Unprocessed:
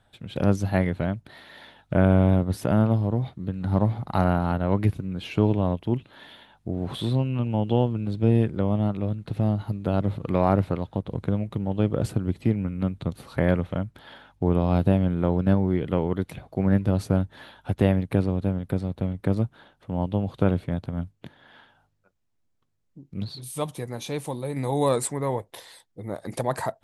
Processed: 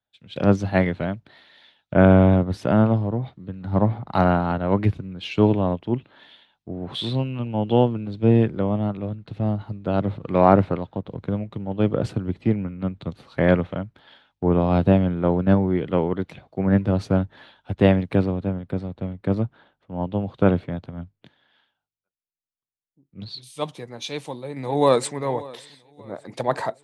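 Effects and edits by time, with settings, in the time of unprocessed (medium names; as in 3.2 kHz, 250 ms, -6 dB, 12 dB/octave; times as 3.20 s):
24.06–25.16 s: echo throw 580 ms, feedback 60%, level -15 dB
whole clip: low-pass 4.7 kHz 12 dB/octave; bass shelf 100 Hz -9.5 dB; three bands expanded up and down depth 70%; trim +4 dB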